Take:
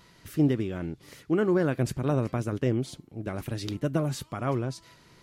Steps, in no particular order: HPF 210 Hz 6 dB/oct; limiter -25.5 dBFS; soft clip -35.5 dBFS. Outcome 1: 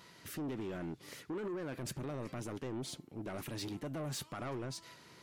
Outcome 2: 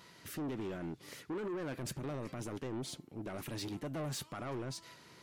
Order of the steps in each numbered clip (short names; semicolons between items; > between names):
limiter > HPF > soft clip; HPF > limiter > soft clip